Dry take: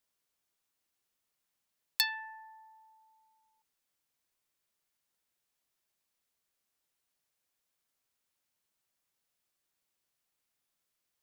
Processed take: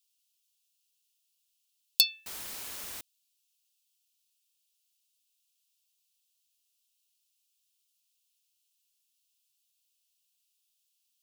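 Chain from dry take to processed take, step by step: steep high-pass 2600 Hz 72 dB/oct; 2.26–3.01 requantised 8-bit, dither triangular; gain +7 dB

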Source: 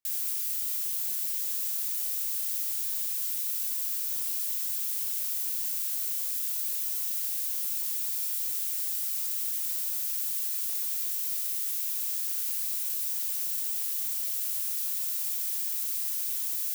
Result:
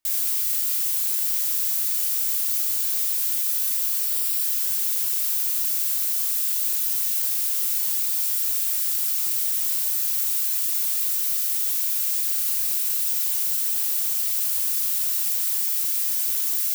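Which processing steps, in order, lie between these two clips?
4.04–4.44 notch 6400 Hz, Q 8.9; in parallel at -3 dB: soft clip -26.5 dBFS, distortion -16 dB; on the sum: shoebox room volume 2400 m³, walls furnished, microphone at 2.7 m; gain +2 dB

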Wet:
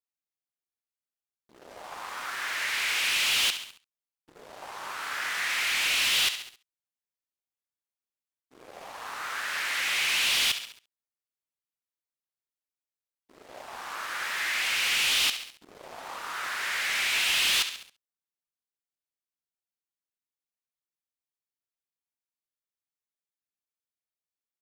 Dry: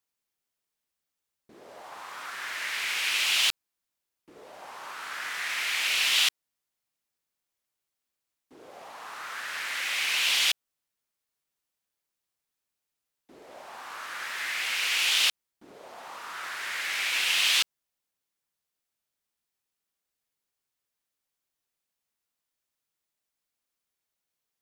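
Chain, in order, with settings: feedback echo 68 ms, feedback 56%, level -15 dB; sample leveller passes 3; gain -8 dB

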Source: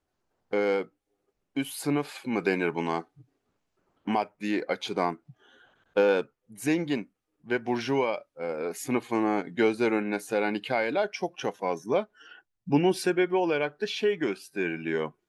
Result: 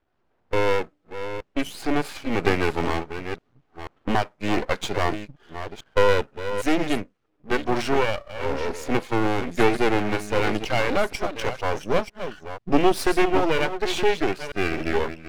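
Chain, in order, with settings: reverse delay 0.484 s, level -10 dB; low-pass opened by the level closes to 2900 Hz, open at -22 dBFS; half-wave rectifier; gain +9 dB

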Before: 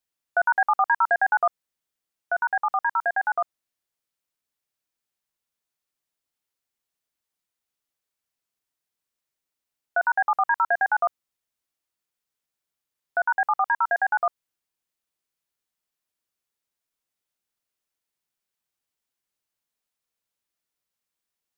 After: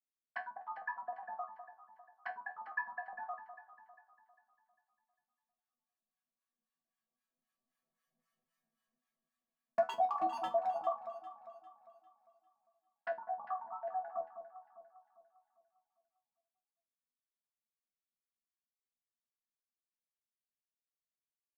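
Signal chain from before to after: Doppler pass-by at 8.3, 9 m/s, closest 5 m; high shelf 2100 Hz -6 dB; comb 5.4 ms, depth 70%; dynamic EQ 920 Hz, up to +4 dB, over -48 dBFS, Q 5; in parallel at +1 dB: compressor 16:1, threshold -37 dBFS, peak gain reduction 15 dB; on the sum: envelope flanger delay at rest 7.9 ms, full sweep at -33.5 dBFS; wavefolder -26.5 dBFS; harmonic tremolo 3.8 Hz, depth 100%, crossover 830 Hz; resonator bank E3 sus4, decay 0.21 s; small resonant body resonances 240/640/1100/1700 Hz, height 16 dB, ringing for 25 ms; on a send: echo with dull and thin repeats by turns 0.2 s, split 1100 Hz, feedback 63%, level -9 dB; on the sum: gain +11 dB

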